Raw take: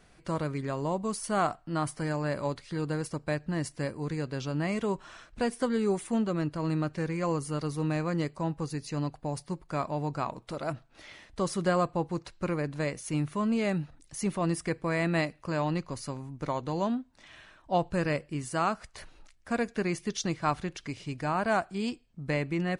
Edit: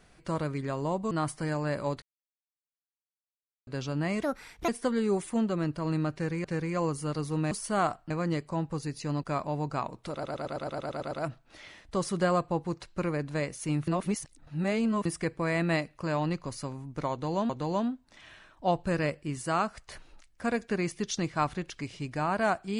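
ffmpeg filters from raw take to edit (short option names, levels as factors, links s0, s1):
-filter_complex "[0:a]asplit=22[s0][s1][s2][s3][s4][s5][s6][s7][s8][s9][s10][s11][s12][s13][s14][s15][s16][s17][s18][s19][s20][s21];[s0]atrim=end=1.112[s22];[s1]atrim=start=1.698:end=2.61,asetpts=PTS-STARTPTS,afade=t=out:st=0.908:d=0.004:c=hsin[s23];[s2]atrim=start=2.61:end=4.26,asetpts=PTS-STARTPTS,volume=0[s24];[s3]atrim=start=4.26:end=4.824,asetpts=PTS-STARTPTS,afade=t=in:d=0.004:c=hsin[s25];[s4]atrim=start=4.82:end=5.46,asetpts=PTS-STARTPTS,asetrate=62181,aresample=44100,atrim=end_sample=20017,asetpts=PTS-STARTPTS[s26];[s5]atrim=start=5.456:end=7.222[s27];[s6]atrim=start=6.908:end=7.982[s28];[s7]atrim=start=1.108:end=1.702[s29];[s8]atrim=start=7.978:end=9.112[s30];[s9]atrim=start=9.668:end=10.672[s31];[s10]atrim=start=10.558:end=10.672[s32];[s11]atrim=start=10.558:end=10.672[s33];[s12]atrim=start=10.558:end=10.672[s34];[s13]atrim=start=10.558:end=10.672[s35];[s14]atrim=start=10.558:end=10.672[s36];[s15]atrim=start=10.558:end=10.672[s37];[s16]atrim=start=10.558:end=10.672[s38];[s17]atrim=start=10.558:end=10.672[s39];[s18]atrim=start=10.558:end=13.322[s40];[s19]atrim=start=13.318:end=14.502,asetpts=PTS-STARTPTS,areverse[s41];[s20]atrim=start=14.498:end=16.942[s42];[s21]atrim=start=16.558[s43];[s23][s24][s25]concat=n=3:v=0:a=1[s44];[s22][s44]acrossfade=d=0.004:c1=hsin:c2=hsin[s45];[s45][s26]acrossfade=d=0.004:c1=hsin:c2=hsin[s46];[s46][s27]acrossfade=d=0.004:c1=hsin:c2=hsin[s47];[s47][s28]acrossfade=d=0.004:c1=hsin:c2=hsin[s48];[s48][s29]acrossfade=d=0.004:c1=hsin:c2=hsin[s49];[s49][s30]acrossfade=d=0.004:c1=hsin:c2=hsin[s50];[s50][s31]acrossfade=d=0.004:c1=hsin:c2=hsin[s51];[s51][s32]acrossfade=d=0.004:c1=hsin:c2=hsin[s52];[s52][s33]acrossfade=d=0.004:c1=hsin:c2=hsin[s53];[s53][s34]acrossfade=d=0.004:c1=hsin:c2=hsin[s54];[s54][s35]acrossfade=d=0.004:c1=hsin:c2=hsin[s55];[s55][s36]acrossfade=d=0.004:c1=hsin:c2=hsin[s56];[s56][s37]acrossfade=d=0.004:c1=hsin:c2=hsin[s57];[s57][s38]acrossfade=d=0.004:c1=hsin:c2=hsin[s58];[s58][s39]acrossfade=d=0.004:c1=hsin:c2=hsin[s59];[s59][s40]acrossfade=d=0.004:c1=hsin:c2=hsin[s60];[s60][s41]acrossfade=d=0.004:c1=hsin:c2=hsin[s61];[s61][s42]acrossfade=d=0.004:c1=hsin:c2=hsin[s62];[s62][s43]acrossfade=d=0.004:c1=hsin:c2=hsin"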